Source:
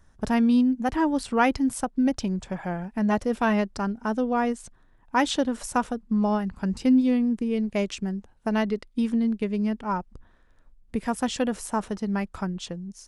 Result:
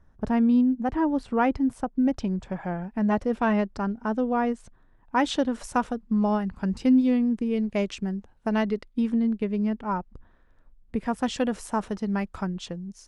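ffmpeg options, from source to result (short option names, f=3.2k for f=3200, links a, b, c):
-af "asetnsamples=n=441:p=0,asendcmd='2.09 lowpass f 2100;5.24 lowpass f 4400;8.89 lowpass f 2300;11.23 lowpass f 5400',lowpass=f=1.1k:p=1"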